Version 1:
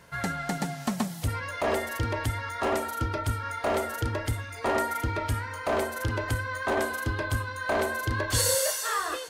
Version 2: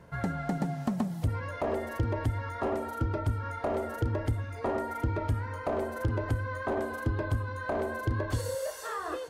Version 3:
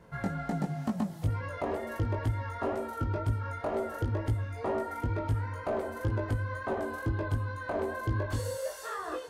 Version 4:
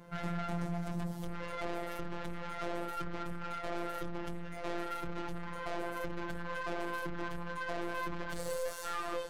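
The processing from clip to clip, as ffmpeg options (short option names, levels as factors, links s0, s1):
-af "acompressor=threshold=0.0398:ratio=6,tiltshelf=f=1300:g=8.5,volume=0.631"
-af "flanger=delay=18:depth=2.6:speed=2.1,volume=1.19"
-af "aeval=exprs='(tanh(100*val(0)+0.65)-tanh(0.65))/100':c=same,afftfilt=real='hypot(re,im)*cos(PI*b)':imag='0':win_size=1024:overlap=0.75,volume=2.37"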